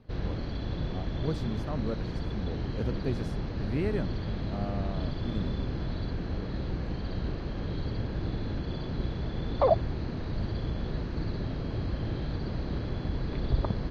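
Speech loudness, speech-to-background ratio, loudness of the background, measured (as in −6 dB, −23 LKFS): −37.5 LKFS, −4.0 dB, −33.5 LKFS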